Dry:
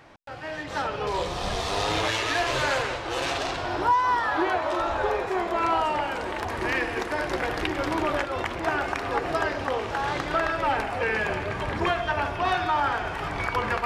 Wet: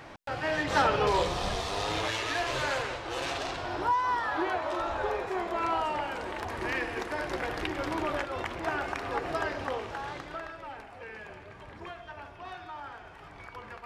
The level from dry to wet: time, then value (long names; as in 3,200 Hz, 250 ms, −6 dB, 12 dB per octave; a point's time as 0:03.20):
0:00.94 +4.5 dB
0:01.71 −5.5 dB
0:09.69 −5.5 dB
0:10.68 −18 dB